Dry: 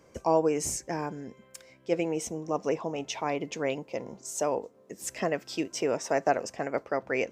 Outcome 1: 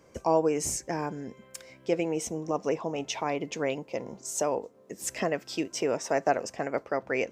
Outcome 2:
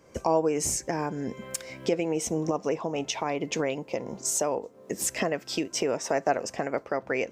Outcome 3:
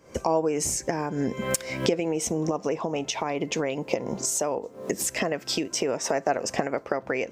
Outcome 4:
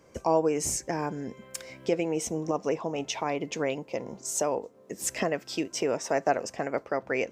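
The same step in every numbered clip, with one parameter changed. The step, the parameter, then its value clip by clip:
recorder AGC, rising by: 5.1, 34, 86, 13 dB/s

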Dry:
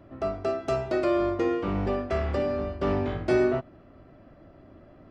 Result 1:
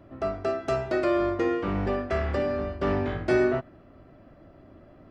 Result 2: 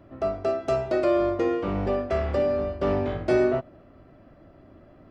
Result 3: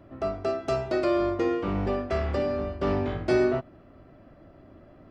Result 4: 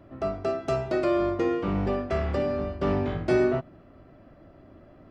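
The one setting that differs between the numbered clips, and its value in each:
dynamic EQ, frequency: 1700, 570, 4700, 160 Hz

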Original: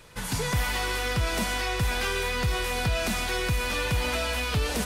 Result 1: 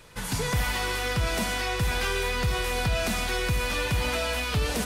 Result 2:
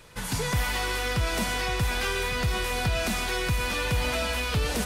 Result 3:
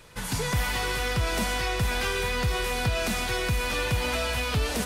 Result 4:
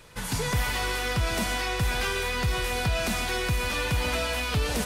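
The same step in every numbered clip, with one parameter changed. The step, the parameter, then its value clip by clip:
dark delay, time: 71, 1147, 431, 136 ms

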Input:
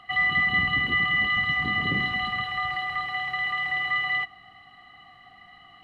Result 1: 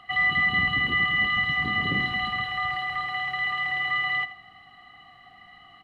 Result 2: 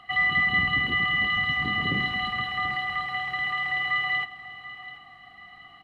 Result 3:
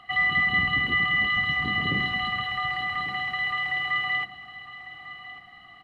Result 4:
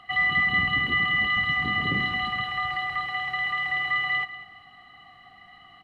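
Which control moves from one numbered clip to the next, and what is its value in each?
feedback echo, time: 82, 735, 1148, 194 ms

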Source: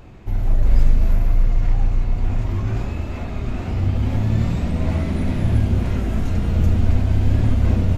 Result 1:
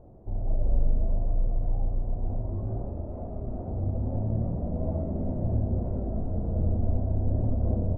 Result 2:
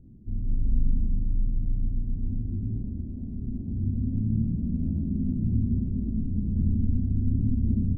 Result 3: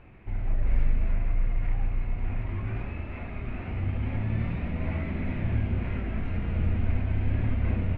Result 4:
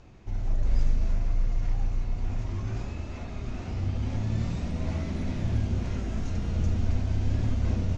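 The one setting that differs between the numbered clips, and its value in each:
ladder low-pass, frequency: 730, 280, 2700, 7100 Hz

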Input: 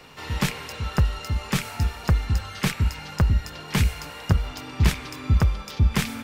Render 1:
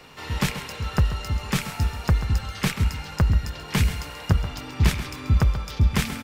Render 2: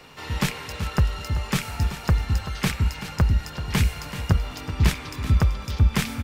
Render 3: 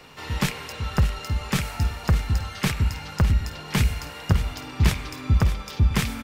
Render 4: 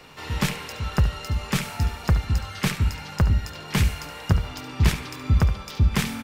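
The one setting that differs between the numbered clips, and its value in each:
feedback echo, time: 134, 382, 606, 71 ms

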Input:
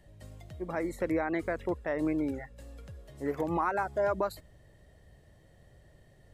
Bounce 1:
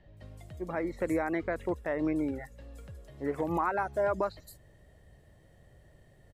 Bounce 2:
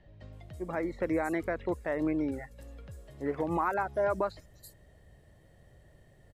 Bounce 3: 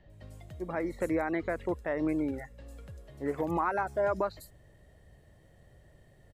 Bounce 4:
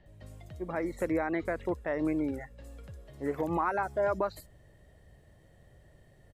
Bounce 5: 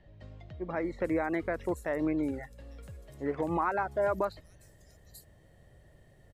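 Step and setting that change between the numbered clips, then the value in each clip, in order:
bands offset in time, time: 170, 330, 100, 60, 840 ms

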